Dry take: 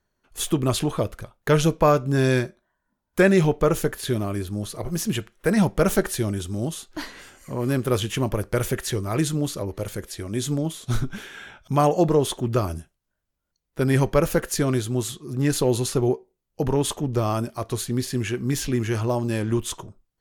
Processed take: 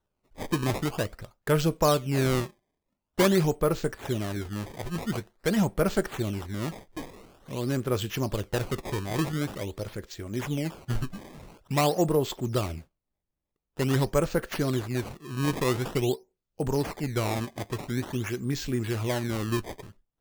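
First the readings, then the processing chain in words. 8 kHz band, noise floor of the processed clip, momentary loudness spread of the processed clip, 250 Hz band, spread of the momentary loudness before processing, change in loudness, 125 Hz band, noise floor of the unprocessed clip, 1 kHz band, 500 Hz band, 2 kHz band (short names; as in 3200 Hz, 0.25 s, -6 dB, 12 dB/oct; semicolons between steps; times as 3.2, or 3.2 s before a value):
-8.0 dB, -84 dBFS, 12 LU, -5.0 dB, 13 LU, -5.0 dB, -5.0 dB, -79 dBFS, -4.5 dB, -5.0 dB, -4.5 dB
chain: steep low-pass 7800 Hz 48 dB/oct; decimation with a swept rate 18×, swing 160% 0.47 Hz; gain -5 dB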